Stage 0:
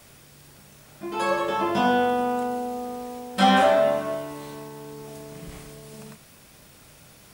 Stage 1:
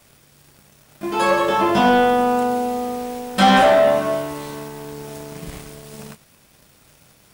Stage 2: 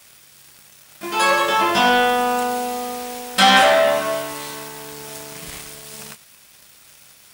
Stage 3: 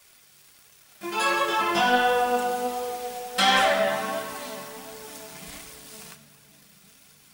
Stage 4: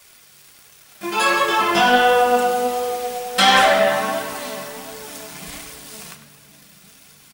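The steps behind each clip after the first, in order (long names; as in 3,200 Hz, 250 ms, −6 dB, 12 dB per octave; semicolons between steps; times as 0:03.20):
leveller curve on the samples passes 2
tilt shelving filter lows −7.5 dB, about 860 Hz
on a send at −8 dB: convolution reverb RT60 3.6 s, pre-delay 3 ms; on the sum: flanger 1.4 Hz, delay 1.7 ms, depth 4.2 ms, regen +39%; level −3.5 dB
far-end echo of a speakerphone 100 ms, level −10 dB; level +6.5 dB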